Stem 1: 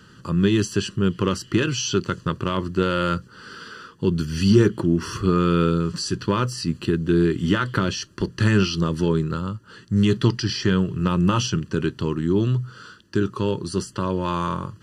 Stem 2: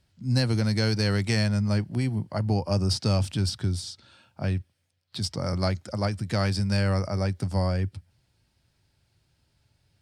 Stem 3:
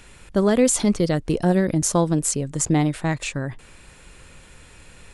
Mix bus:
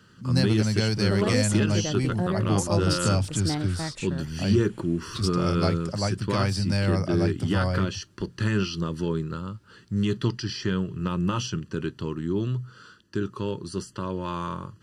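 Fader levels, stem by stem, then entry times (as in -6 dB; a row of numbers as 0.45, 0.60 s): -6.5, -0.5, -9.5 dB; 0.00, 0.00, 0.75 s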